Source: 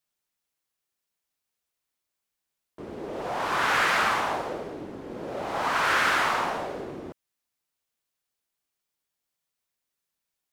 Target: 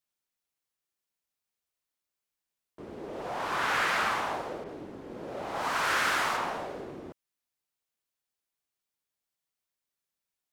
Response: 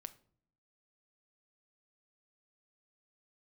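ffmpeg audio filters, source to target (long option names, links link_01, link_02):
-filter_complex "[0:a]asettb=1/sr,asplit=3[link_01][link_02][link_03];[link_01]atrim=end=4.644[link_04];[link_02]atrim=start=4.64:end=6.37,asetpts=PTS-STARTPTS,afade=type=in:duration=0.004:curve=qsin,afade=type=out:start_time=1.726:duration=0.004:curve=qsin,adynamicequalizer=threshold=0.0112:dfrequency=4400:dqfactor=0.7:tfrequency=4400:tqfactor=0.7:attack=5:release=100:ratio=0.375:range=2.5:mode=boostabove:tftype=highshelf[link_05];[link_03]atrim=start=6.366[link_06];[link_04][link_05]acrossfade=duration=0.004:curve1=hsin:curve2=qsin[link_07];[link_07][link_06]acrossfade=duration=0.004:curve1=qsin:curve2=hsin,volume=-4.5dB"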